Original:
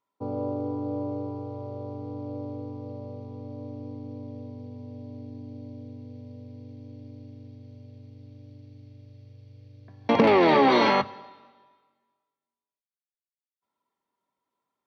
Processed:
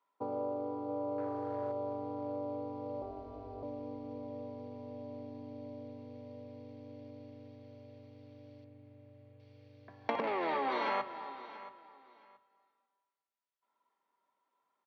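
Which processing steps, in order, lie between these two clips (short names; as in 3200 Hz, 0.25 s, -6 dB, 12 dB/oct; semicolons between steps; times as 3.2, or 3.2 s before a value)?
1.18–1.72 sample leveller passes 1; compressor 6:1, threshold -33 dBFS, peak gain reduction 17 dB; band-pass 1200 Hz, Q 0.62; 3.02–3.63 ring modulator 190 Hz; 8.64–9.4 air absorption 470 m; feedback echo 0.677 s, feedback 22%, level -16 dB; reverb, pre-delay 55 ms, DRR 19 dB; gain +4 dB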